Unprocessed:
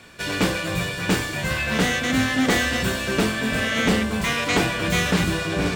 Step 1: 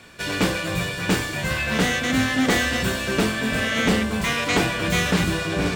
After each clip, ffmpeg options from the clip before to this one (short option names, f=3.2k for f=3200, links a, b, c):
-af anull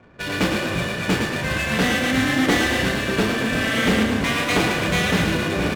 -filter_complex "[0:a]adynamicsmooth=sensitivity=6.5:basefreq=790,asplit=9[a][b][c][d][e][f][g][h][i];[b]adelay=109,afreqshift=30,volume=-5.5dB[j];[c]adelay=218,afreqshift=60,volume=-9.9dB[k];[d]adelay=327,afreqshift=90,volume=-14.4dB[l];[e]adelay=436,afreqshift=120,volume=-18.8dB[m];[f]adelay=545,afreqshift=150,volume=-23.2dB[n];[g]adelay=654,afreqshift=180,volume=-27.7dB[o];[h]adelay=763,afreqshift=210,volume=-32.1dB[p];[i]adelay=872,afreqshift=240,volume=-36.6dB[q];[a][j][k][l][m][n][o][p][q]amix=inputs=9:normalize=0"